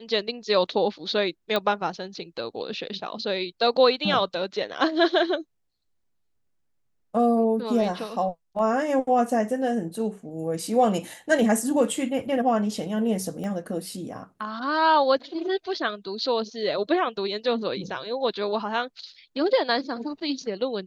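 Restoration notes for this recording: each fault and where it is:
1.56 pop -12 dBFS
13.44 pop -23 dBFS

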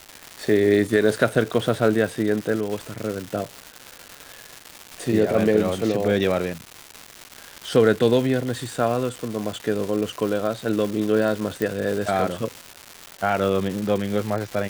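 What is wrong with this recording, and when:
crackle 430/s -27 dBFS
11.62 pop

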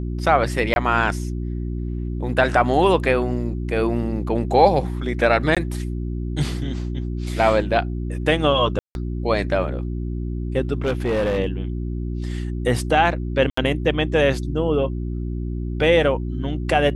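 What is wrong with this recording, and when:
hum 60 Hz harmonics 6 -26 dBFS
0.74–0.76 gap 21 ms
5.55–5.57 gap 16 ms
8.79–8.95 gap 0.161 s
10.85–11.38 clipped -17 dBFS
13.5–13.57 gap 74 ms

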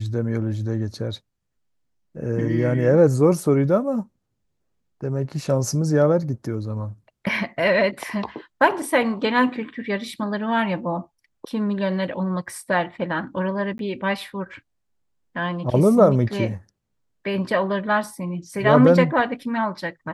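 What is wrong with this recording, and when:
13.78–13.79 gap 12 ms

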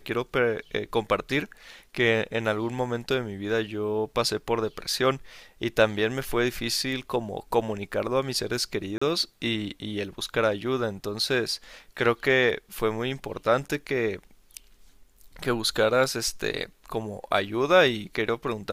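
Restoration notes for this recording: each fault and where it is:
8.98–9.02 gap 35 ms

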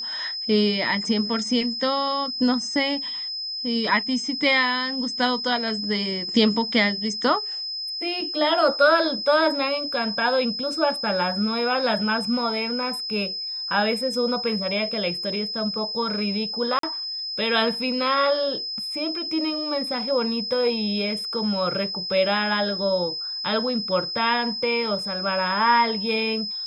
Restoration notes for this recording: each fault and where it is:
tone 5100 Hz -28 dBFS
16.79–16.83 gap 43 ms

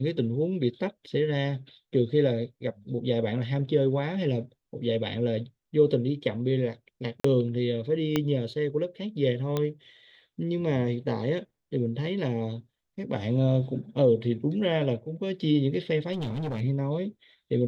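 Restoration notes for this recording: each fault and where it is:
7.2–7.24 gap 44 ms
8.16 pop -11 dBFS
9.57 pop -15 dBFS
16.12–16.62 clipped -27.5 dBFS

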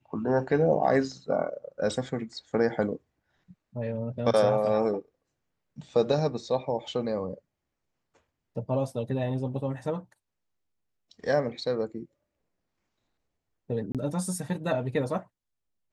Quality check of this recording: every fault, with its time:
13.92–13.95 gap 27 ms

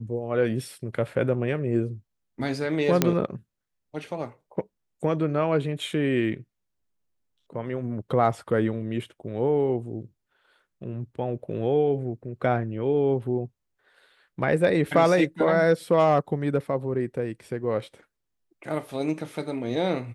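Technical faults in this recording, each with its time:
3.02 pop -4 dBFS

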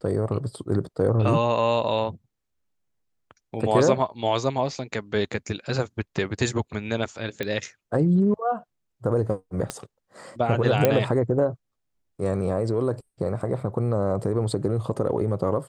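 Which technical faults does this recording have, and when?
7.43 pop -15 dBFS
9.7 pop -13 dBFS
10.85 pop -5 dBFS

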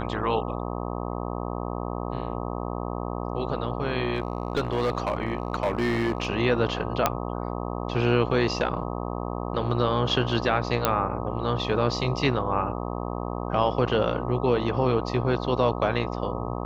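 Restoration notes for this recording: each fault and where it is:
buzz 60 Hz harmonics 21 -31 dBFS
4.15–6.27 clipped -19.5 dBFS
7.06 pop -5 dBFS
10.85 pop -5 dBFS

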